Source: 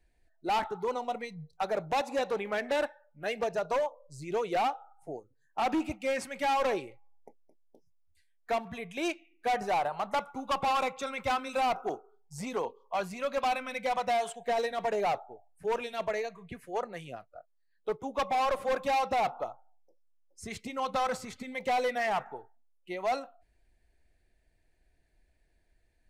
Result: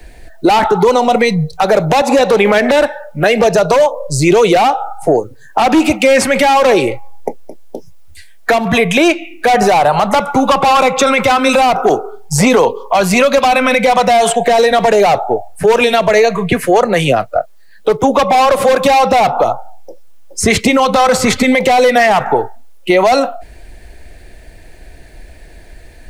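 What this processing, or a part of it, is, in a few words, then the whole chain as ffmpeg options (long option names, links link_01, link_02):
mastering chain: -filter_complex "[0:a]equalizer=frequency=530:width_type=o:width=0.77:gain=2.5,acrossover=split=98|230|2900[link_01][link_02][link_03][link_04];[link_01]acompressor=threshold=-57dB:ratio=4[link_05];[link_02]acompressor=threshold=-52dB:ratio=4[link_06];[link_03]acompressor=threshold=-35dB:ratio=4[link_07];[link_04]acompressor=threshold=-49dB:ratio=4[link_08];[link_05][link_06][link_07][link_08]amix=inputs=4:normalize=0,acompressor=threshold=-36dB:ratio=6,asoftclip=type=tanh:threshold=-26dB,alimiter=level_in=34.5dB:limit=-1dB:release=50:level=0:latency=1,volume=-1dB"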